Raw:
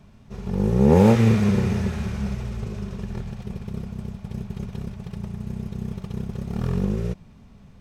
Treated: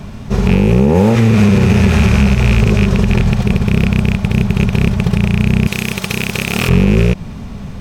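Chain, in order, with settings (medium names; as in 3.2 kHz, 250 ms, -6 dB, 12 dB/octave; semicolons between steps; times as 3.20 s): rattle on loud lows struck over -27 dBFS, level -26 dBFS; 5.67–6.69 s: tilt EQ +3.5 dB/octave; compression 4:1, threshold -26 dBFS, peak gain reduction 13.5 dB; loudness maximiser +22.5 dB; trim -1 dB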